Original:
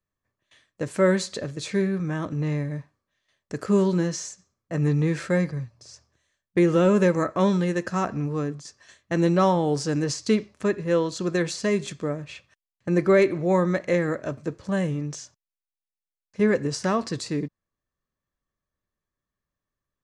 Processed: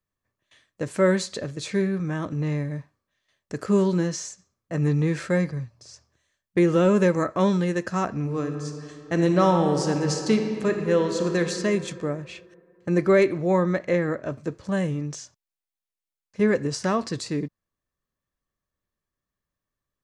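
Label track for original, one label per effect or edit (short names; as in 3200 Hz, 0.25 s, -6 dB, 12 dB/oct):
8.180000	11.400000	reverb throw, RT60 2.7 s, DRR 4.5 dB
13.500000	14.300000	high shelf 8800 Hz -> 4900 Hz -11 dB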